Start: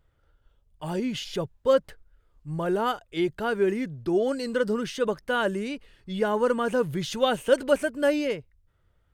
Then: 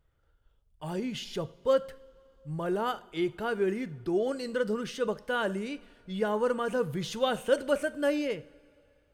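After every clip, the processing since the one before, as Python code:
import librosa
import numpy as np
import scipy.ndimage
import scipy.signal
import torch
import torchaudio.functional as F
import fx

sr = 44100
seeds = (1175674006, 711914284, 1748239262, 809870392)

y = fx.rev_double_slope(x, sr, seeds[0], early_s=0.53, late_s=3.2, knee_db=-18, drr_db=13.5)
y = F.gain(torch.from_numpy(y), -4.5).numpy()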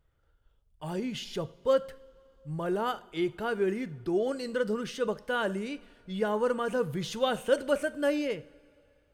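y = x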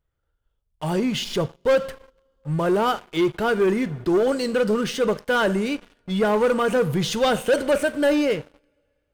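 y = fx.leveller(x, sr, passes=3)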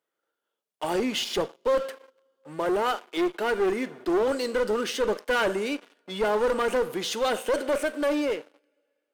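y = scipy.signal.sosfilt(scipy.signal.butter(4, 280.0, 'highpass', fs=sr, output='sos'), x)
y = fx.rider(y, sr, range_db=4, speed_s=2.0)
y = fx.clip_asym(y, sr, top_db=-22.5, bottom_db=-13.0)
y = F.gain(torch.from_numpy(y), -2.0).numpy()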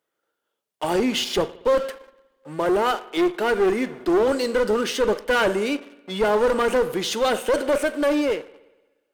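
y = fx.peak_eq(x, sr, hz=81.0, db=4.0, octaves=2.9)
y = fx.rev_spring(y, sr, rt60_s=1.1, pass_ms=(59,), chirp_ms=50, drr_db=18.5)
y = F.gain(torch.from_numpy(y), 4.0).numpy()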